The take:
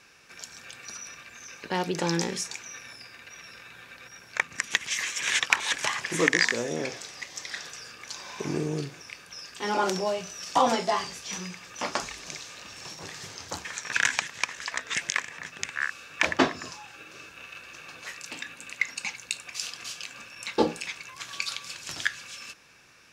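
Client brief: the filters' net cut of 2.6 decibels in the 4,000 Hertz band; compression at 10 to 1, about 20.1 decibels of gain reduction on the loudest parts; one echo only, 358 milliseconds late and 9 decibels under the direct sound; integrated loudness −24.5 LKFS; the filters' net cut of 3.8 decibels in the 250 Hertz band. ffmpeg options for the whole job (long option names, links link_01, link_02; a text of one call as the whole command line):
ffmpeg -i in.wav -af "equalizer=frequency=250:width_type=o:gain=-5.5,equalizer=frequency=4000:width_type=o:gain=-3.5,acompressor=threshold=-39dB:ratio=10,aecho=1:1:358:0.355,volume=18dB" out.wav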